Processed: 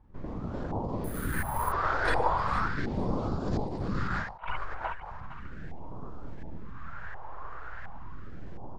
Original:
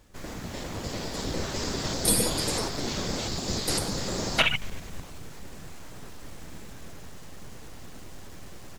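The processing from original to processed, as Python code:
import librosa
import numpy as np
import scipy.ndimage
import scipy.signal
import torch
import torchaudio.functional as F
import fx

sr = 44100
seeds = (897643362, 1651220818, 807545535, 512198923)

p1 = fx.filter_lfo_lowpass(x, sr, shape='saw_up', hz=1.4, low_hz=810.0, high_hz=1700.0, q=6.3)
p2 = p1 + fx.echo_feedback(p1, sr, ms=458, feedback_pct=27, wet_db=-13, dry=0)
p3 = fx.resample_bad(p2, sr, factor=4, down='filtered', up='hold', at=(1.04, 1.72))
p4 = fx.over_compress(p3, sr, threshold_db=-29.0, ratio=-0.5, at=(3.45, 4.56), fade=0.02)
p5 = fx.phaser_stages(p4, sr, stages=2, low_hz=190.0, high_hz=1800.0, hz=0.37, feedback_pct=25)
p6 = fx.end_taper(p5, sr, db_per_s=100.0)
y = p6 * librosa.db_to_amplitude(2.0)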